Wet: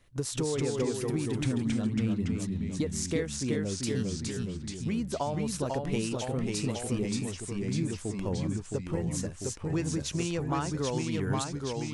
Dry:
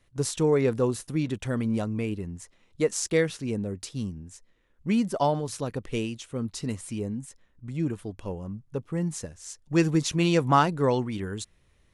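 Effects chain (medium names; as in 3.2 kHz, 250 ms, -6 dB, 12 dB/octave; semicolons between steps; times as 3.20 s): 1.43–2.85 s: fifteen-band graphic EQ 100 Hz +9 dB, 250 Hz +12 dB, 4 kHz +9 dB; compression 12:1, threshold -30 dBFS, peak gain reduction 16 dB; ever faster or slower copies 188 ms, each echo -1 st, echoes 3; trim +2 dB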